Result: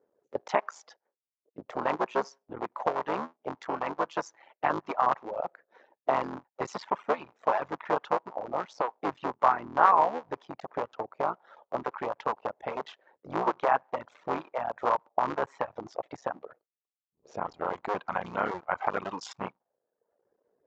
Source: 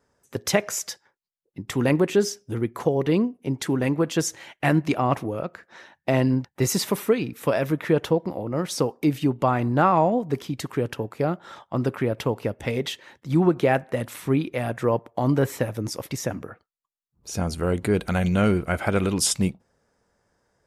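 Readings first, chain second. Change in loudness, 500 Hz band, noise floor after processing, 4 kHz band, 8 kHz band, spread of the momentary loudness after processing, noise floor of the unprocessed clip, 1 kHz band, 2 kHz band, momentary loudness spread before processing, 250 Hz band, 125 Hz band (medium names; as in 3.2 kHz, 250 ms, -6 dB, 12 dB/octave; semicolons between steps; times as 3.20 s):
-7.0 dB, -8.0 dB, under -85 dBFS, -15.0 dB, under -20 dB, 13 LU, -78 dBFS, +1.5 dB, -5.5 dB, 10 LU, -17.0 dB, -23.5 dB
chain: cycle switcher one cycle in 3, muted; reverb removal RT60 0.82 s; peaking EQ 65 Hz -3 dB 1.3 oct; auto-wah 450–1000 Hz, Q 2.7, up, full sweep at -24 dBFS; resampled via 16 kHz; trim +6 dB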